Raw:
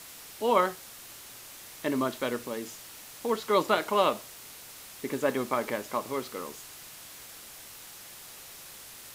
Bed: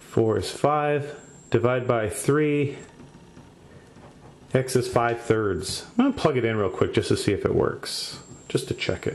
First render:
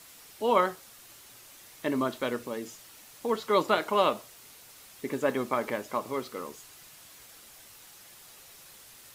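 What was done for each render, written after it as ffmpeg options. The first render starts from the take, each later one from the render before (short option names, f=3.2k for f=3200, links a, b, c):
-af "afftdn=nr=6:nf=-47"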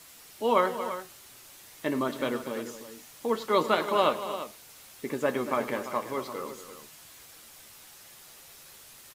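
-filter_complex "[0:a]asplit=2[a][b];[b]adelay=13,volume=-12dB[c];[a][c]amix=inputs=2:normalize=0,aecho=1:1:104|233|341:0.133|0.237|0.251"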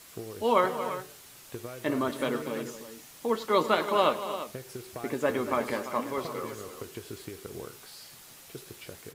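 -filter_complex "[1:a]volume=-19.5dB[a];[0:a][a]amix=inputs=2:normalize=0"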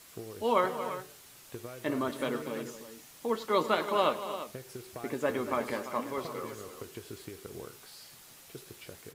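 -af "volume=-3dB"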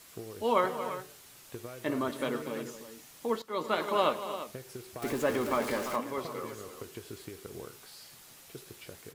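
-filter_complex "[0:a]asettb=1/sr,asplit=3[a][b][c];[a]atrim=end=5.024[d];[b]atrim=start=5.02:end=5.96,asetpts=PTS-STARTPTS,afade=t=in:d=0.004:c=qsin,afade=t=out:st=0.936:d=0.004:c=qsin,aeval=exprs='val(0)+0.5*0.0168*sgn(val(0))':c=same[e];[c]atrim=start=5.956[f];[d][e]acrossfade=d=0.004:c1=hsin:c2=qsin[g];[g][f]acrossfade=d=0.004:c1=qsin:c2=hsin,asplit=2[h][i];[h]atrim=end=3.42,asetpts=PTS-STARTPTS,afade=t=out:st=3.416:d=0.004:c=hsin:silence=0.158489[j];[i]atrim=start=3.42,asetpts=PTS-STARTPTS,afade=t=in:d=0.42:silence=0.158489[k];[j][k]concat=n=2:v=0:a=1"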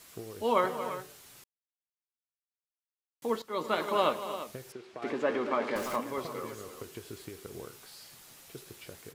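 -filter_complex "[0:a]asettb=1/sr,asplit=3[a][b][c];[a]atrim=end=4.724[d];[b]atrim=start=4.72:end=5.76,asetpts=PTS-STARTPTS,afade=t=in:d=0.004:c=qsin,afade=t=out:st=1.036:d=0.004:c=qsin,highpass=230,lowpass=3.4k[e];[c]atrim=start=5.756[f];[d][e]acrossfade=d=0.004:c1=hsin:c2=qsin[g];[g][f]acrossfade=d=0.004:c1=qsin:c2=hsin,asplit=3[h][i][j];[h]atrim=end=1.44,asetpts=PTS-STARTPTS,afade=t=out:st=1.436:d=0.004:c=hsin[k];[i]atrim=start=1.44:end=3.22,asetpts=PTS-STARTPTS,volume=0[l];[j]atrim=start=3.22,asetpts=PTS-STARTPTS,afade=t=in:d=0.004:c=hsin[m];[k][l][m]concat=n=3:v=0:a=1"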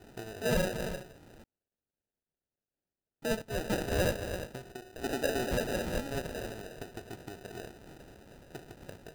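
-af "acrusher=samples=40:mix=1:aa=0.000001,asoftclip=type=tanh:threshold=-20dB"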